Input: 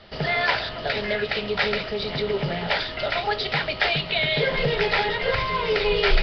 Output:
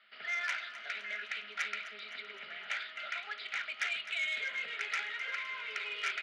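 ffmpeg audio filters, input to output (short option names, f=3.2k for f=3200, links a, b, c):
-filter_complex "[0:a]highpass=f=220:w=0.5412,highpass=f=220:w=1.3066,equalizer=f=220:t=q:w=4:g=8,equalizer=f=320:t=q:w=4:g=-7,equalizer=f=500:t=q:w=4:g=-8,equalizer=f=890:t=q:w=4:g=-9,equalizer=f=1.4k:t=q:w=4:g=10,equalizer=f=2.2k:t=q:w=4:g=6,lowpass=f=3k:w=0.5412,lowpass=f=3k:w=1.3066,asoftclip=type=tanh:threshold=-9dB,aderivative,asplit=2[a][b];[b]aecho=0:1:257|514|771|1028|1285|1542:0.188|0.107|0.0612|0.0349|0.0199|0.0113[c];[a][c]amix=inputs=2:normalize=0,volume=-3.5dB"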